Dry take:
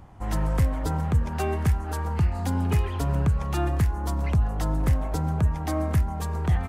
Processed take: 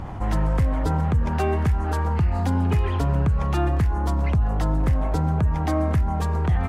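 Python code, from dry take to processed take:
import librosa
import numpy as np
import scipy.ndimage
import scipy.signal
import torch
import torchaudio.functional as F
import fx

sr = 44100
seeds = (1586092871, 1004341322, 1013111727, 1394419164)

y = fx.high_shelf(x, sr, hz=6000.0, db=-12.0)
y = fx.env_flatten(y, sr, amount_pct=50)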